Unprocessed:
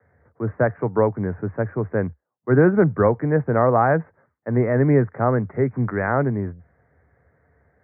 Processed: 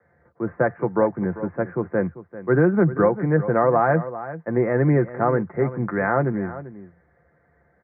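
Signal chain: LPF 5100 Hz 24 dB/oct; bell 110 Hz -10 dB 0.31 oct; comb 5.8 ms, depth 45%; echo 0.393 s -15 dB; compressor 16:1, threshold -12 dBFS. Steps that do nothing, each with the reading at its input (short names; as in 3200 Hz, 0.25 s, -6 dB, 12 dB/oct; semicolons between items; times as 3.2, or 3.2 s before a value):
LPF 5100 Hz: input band ends at 1900 Hz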